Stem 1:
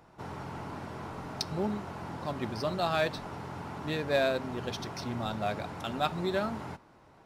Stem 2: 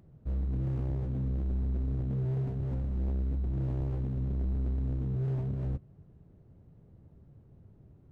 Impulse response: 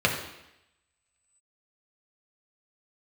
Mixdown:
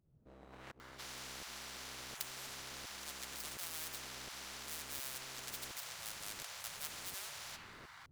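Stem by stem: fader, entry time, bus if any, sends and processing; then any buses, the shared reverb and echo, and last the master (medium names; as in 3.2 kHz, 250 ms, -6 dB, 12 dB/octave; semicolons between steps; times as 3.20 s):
+2.5 dB, 0.80 s, send -17.5 dB, median filter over 15 samples; high-pass 1.4 kHz 24 dB/octave
+1.0 dB, 0.00 s, no send, sawtooth tremolo in dB swelling 1.4 Hz, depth 34 dB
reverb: on, RT60 0.85 s, pre-delay 3 ms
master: spectrum-flattening compressor 10:1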